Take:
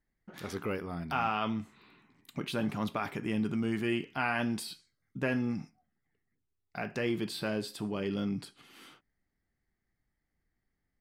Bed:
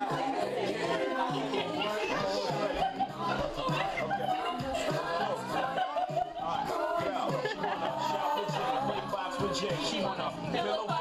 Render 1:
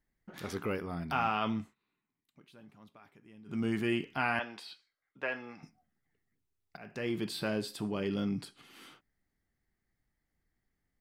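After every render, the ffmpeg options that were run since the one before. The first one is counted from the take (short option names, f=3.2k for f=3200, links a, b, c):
-filter_complex "[0:a]asettb=1/sr,asplit=3[a][b][c];[a]atrim=end=4.394[d];[b]atrim=start=4.39:end=5.63,asetpts=PTS-STARTPTS,afade=t=in:d=0.004:c=qsin,afade=t=out:st=1.236:d=0.004:c=qsin,acrossover=split=470 4300:gain=0.0708 1 0.112[e][f][g];[e][f][g]amix=inputs=3:normalize=0[h];[c]atrim=start=5.626[i];[d][h]acrossfade=d=0.004:c1=hsin:c2=qsin[j];[j][i]acrossfade=d=0.004:c1=qsin:c2=hsin,asplit=4[k][l][m][n];[k]atrim=end=1.75,asetpts=PTS-STARTPTS,afade=t=out:st=1.54:d=0.21:c=qsin:silence=0.0668344[o];[l]atrim=start=1.75:end=3.46,asetpts=PTS-STARTPTS,volume=-23.5dB[p];[m]atrim=start=3.46:end=6.77,asetpts=PTS-STARTPTS,afade=t=in:d=0.21:c=qsin:silence=0.0668344,afade=t=out:st=3.306:d=0.004:c=hsin:silence=0.112202[q];[n]atrim=start=6.77,asetpts=PTS-STARTPTS,afade=t=in:d=0.66:c=qsin:silence=0.112202[r];[o][p][q][r]concat=n=4:v=0:a=1"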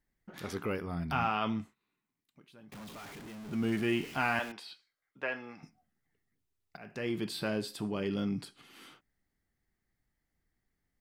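-filter_complex "[0:a]asettb=1/sr,asplit=3[a][b][c];[a]atrim=end=0.704[d];[b]atrim=start=0.7:end=1.25,asetpts=PTS-STARTPTS,afade=t=in:d=0.004:c=qsin,afade=t=out:st=0.546:d=0.004:c=qsin,asubboost=boost=10:cutoff=230[e];[c]atrim=start=1.246[f];[d][e]acrossfade=d=0.004:c1=hsin:c2=qsin[g];[g][f]acrossfade=d=0.004:c1=qsin:c2=hsin,asettb=1/sr,asplit=3[h][i][j];[h]atrim=end=2.724[k];[i]atrim=start=2.72:end=4.52,asetpts=PTS-STARTPTS,afade=t=in:d=0.004:c=qsin,afade=t=out:st=1.796:d=0.004:c=qsin,aeval=exprs='val(0)+0.5*0.0075*sgn(val(0))':c=same[l];[j]atrim=start=4.516[m];[k][l]acrossfade=d=0.004:c1=hsin:c2=qsin[n];[n][m]acrossfade=d=0.004:c1=qsin:c2=hsin"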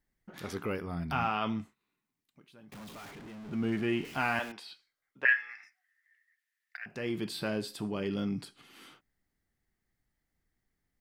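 -filter_complex "[0:a]asettb=1/sr,asplit=3[a][b][c];[a]atrim=end=3.114[d];[b]atrim=start=3.11:end=4.05,asetpts=PTS-STARTPTS,afade=t=in:d=0.004:c=qsin,afade=t=out:st=0.936:d=0.004:c=qsin,lowpass=f=3.4k:p=1[e];[c]atrim=start=4.046[f];[d][e]acrossfade=d=0.004:c1=hsin:c2=qsin[g];[g][f]acrossfade=d=0.004:c1=qsin:c2=hsin,asettb=1/sr,asplit=3[h][i][j];[h]atrim=end=5.254[k];[i]atrim=start=5.25:end=6.86,asetpts=PTS-STARTPTS,afade=t=in:d=0.004:c=qsin,afade=t=out:st=1.606:d=0.004:c=qsin,highpass=f=1.8k:t=q:w=13[l];[j]atrim=start=6.856[m];[k][l]acrossfade=d=0.004:c1=hsin:c2=qsin[n];[n][m]acrossfade=d=0.004:c1=qsin:c2=hsin"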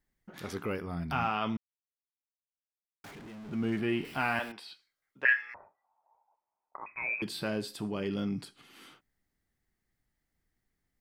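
-filter_complex "[0:a]asettb=1/sr,asplit=3[a][b][c];[a]atrim=end=3.794[d];[b]atrim=start=3.79:end=4.63,asetpts=PTS-STARTPTS,afade=t=in:d=0.004:c=qsin,afade=t=out:st=0.836:d=0.004:c=qsin,equalizer=f=6.6k:w=6.3:g=-13.5[e];[c]atrim=start=4.626[f];[d][e]acrossfade=d=0.004:c1=hsin:c2=qsin[g];[g][f]acrossfade=d=0.004:c1=qsin:c2=hsin,asettb=1/sr,asplit=3[h][i][j];[h]atrim=end=5.544[k];[i]atrim=start=5.54:end=7.22,asetpts=PTS-STARTPTS,afade=t=in:d=0.004:c=qsin,afade=t=out:st=1.676:d=0.004:c=qsin,lowpass=f=2.3k:t=q:w=0.5098,lowpass=f=2.3k:t=q:w=0.6013,lowpass=f=2.3k:t=q:w=0.9,lowpass=f=2.3k:t=q:w=2.563,afreqshift=-2700[l];[j]atrim=start=7.216[m];[k][l]acrossfade=d=0.004:c1=hsin:c2=qsin[n];[n][m]acrossfade=d=0.004:c1=qsin:c2=hsin,asplit=3[o][p][q];[o]atrim=end=1.57,asetpts=PTS-STARTPTS,afade=t=out:st=1.566:d=0.004:c=hsin[r];[p]atrim=start=1.57:end=3.04,asetpts=PTS-STARTPTS,volume=0[s];[q]atrim=start=3.04,asetpts=PTS-STARTPTS,afade=t=in:d=0.004:c=hsin[t];[r][s][t]concat=n=3:v=0:a=1"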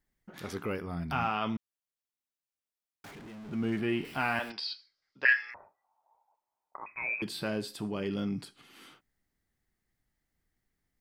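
-filter_complex "[0:a]asettb=1/sr,asplit=3[a][b][c];[a]atrim=end=4.504[d];[b]atrim=start=4.5:end=5.51,asetpts=PTS-STARTPTS,afade=t=in:d=0.004:c=qsin,afade=t=out:st=1.006:d=0.004:c=qsin,lowpass=f=4.9k:t=q:w=7.2[e];[c]atrim=start=5.506[f];[d][e]acrossfade=d=0.004:c1=hsin:c2=qsin[g];[g][f]acrossfade=d=0.004:c1=qsin:c2=hsin"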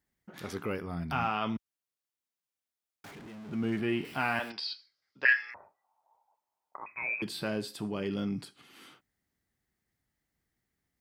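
-af "highpass=56"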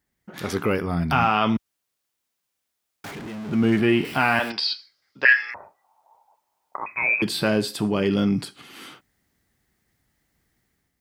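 -filter_complex "[0:a]asplit=2[a][b];[b]alimiter=limit=-22dB:level=0:latency=1:release=90,volume=-2dB[c];[a][c]amix=inputs=2:normalize=0,dynaudnorm=f=100:g=7:m=7dB"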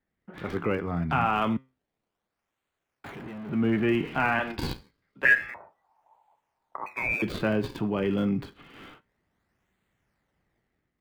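-filter_complex "[0:a]flanger=delay=4.9:depth=4.1:regen=85:speed=0.2:shape=triangular,acrossover=split=120|470|3300[a][b][c][d];[d]acrusher=samples=40:mix=1:aa=0.000001:lfo=1:lforange=64:lforate=0.28[e];[a][b][c][e]amix=inputs=4:normalize=0"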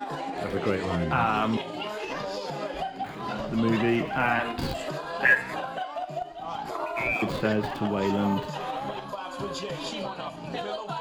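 -filter_complex "[1:a]volume=-1.5dB[a];[0:a][a]amix=inputs=2:normalize=0"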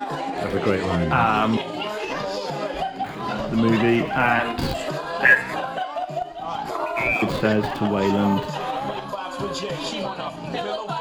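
-af "volume=5.5dB"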